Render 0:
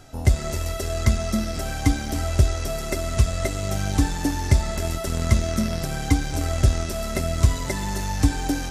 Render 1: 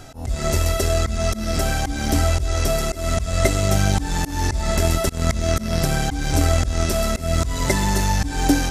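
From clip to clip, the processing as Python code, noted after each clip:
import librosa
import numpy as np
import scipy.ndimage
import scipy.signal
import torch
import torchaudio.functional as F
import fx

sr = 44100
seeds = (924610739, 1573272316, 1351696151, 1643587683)

y = fx.auto_swell(x, sr, attack_ms=198.0)
y = F.gain(torch.from_numpy(y), 7.5).numpy()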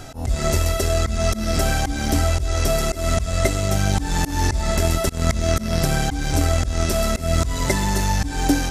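y = fx.rider(x, sr, range_db=4, speed_s=0.5)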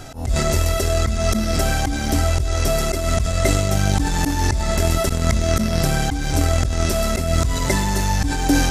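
y = fx.sustainer(x, sr, db_per_s=28.0)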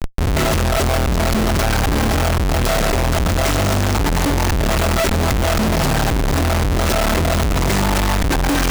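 y = fx.schmitt(x, sr, flips_db=-26.0)
y = F.gain(torch.from_numpy(y), 2.5).numpy()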